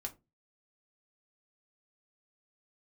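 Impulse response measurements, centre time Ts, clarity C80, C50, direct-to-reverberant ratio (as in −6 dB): 8 ms, 26.0 dB, 19.0 dB, 1.5 dB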